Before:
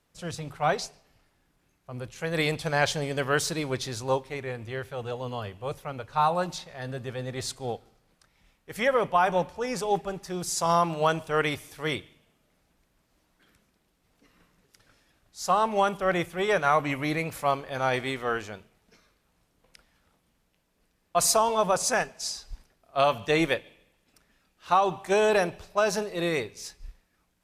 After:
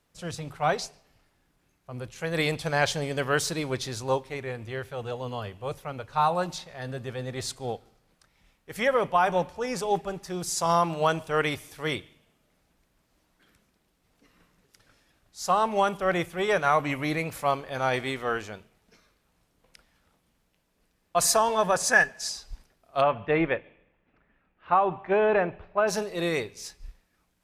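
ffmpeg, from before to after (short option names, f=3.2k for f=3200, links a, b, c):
-filter_complex "[0:a]asettb=1/sr,asplit=3[a][b][c];[a]atrim=end=21.224[d];[b]atrim=start=21.22:end=22.29,asetpts=PTS-STARTPTS,afade=t=in:d=0.004:c=qsin,afade=t=out:st=1.066:d=0.004:c=qsin,equalizer=f=1.7k:w=7.2:g=13[e];[c]atrim=start=22.286[f];[d][e]acrossfade=d=0.004:c1=hsin:c2=qsin[g];[g][f]acrossfade=d=0.004:c1=qsin:c2=hsin,asplit=3[h][i][j];[h]afade=t=out:st=23:d=0.02[k];[i]lowpass=f=2.4k:w=0.5412,lowpass=f=2.4k:w=1.3066,afade=t=in:st=23:d=0.02,afade=t=out:st=25.87:d=0.02[l];[j]afade=t=in:st=25.87:d=0.02[m];[k][l][m]amix=inputs=3:normalize=0"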